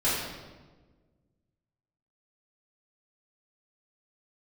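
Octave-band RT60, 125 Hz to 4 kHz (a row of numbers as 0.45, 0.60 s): 2.0, 1.9, 1.5, 1.2, 1.0, 0.90 s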